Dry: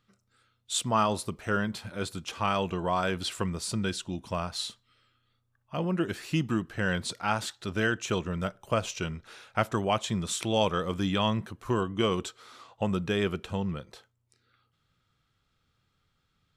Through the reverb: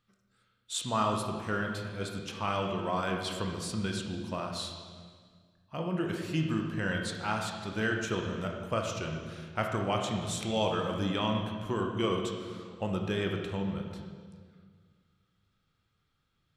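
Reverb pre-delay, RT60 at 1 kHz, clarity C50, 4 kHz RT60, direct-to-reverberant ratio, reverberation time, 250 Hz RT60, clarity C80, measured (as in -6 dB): 18 ms, 1.7 s, 3.5 dB, 1.5 s, 1.5 dB, 1.8 s, 2.2 s, 5.0 dB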